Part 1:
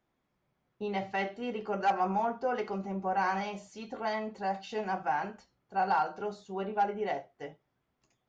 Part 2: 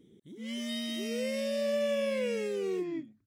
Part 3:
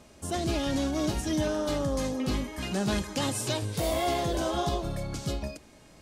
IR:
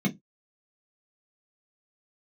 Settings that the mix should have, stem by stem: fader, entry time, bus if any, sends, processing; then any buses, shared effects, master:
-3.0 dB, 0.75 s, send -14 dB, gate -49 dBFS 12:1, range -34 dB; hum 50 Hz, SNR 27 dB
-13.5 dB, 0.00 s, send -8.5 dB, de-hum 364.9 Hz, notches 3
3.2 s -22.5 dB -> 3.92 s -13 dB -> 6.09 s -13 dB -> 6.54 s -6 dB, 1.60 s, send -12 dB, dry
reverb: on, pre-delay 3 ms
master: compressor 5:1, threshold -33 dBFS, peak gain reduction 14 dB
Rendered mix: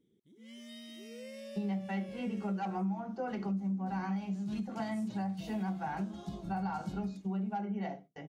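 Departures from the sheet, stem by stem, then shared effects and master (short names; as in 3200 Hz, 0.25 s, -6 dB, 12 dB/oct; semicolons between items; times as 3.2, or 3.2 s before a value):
stem 1: missing hum 50 Hz, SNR 27 dB; stem 2: send off; stem 3 -22.5 dB -> -31.5 dB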